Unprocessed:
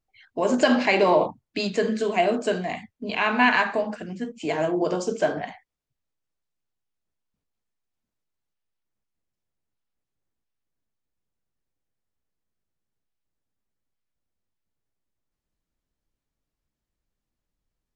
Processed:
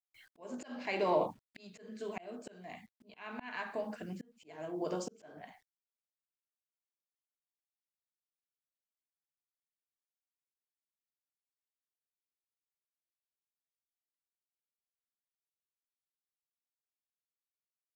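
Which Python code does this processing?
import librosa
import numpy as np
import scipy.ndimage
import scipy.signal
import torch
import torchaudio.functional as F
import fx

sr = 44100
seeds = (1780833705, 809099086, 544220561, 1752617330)

y = fx.quant_dither(x, sr, seeds[0], bits=10, dither='none')
y = fx.auto_swell(y, sr, attack_ms=741.0)
y = y * 10.0 ** (-7.5 / 20.0)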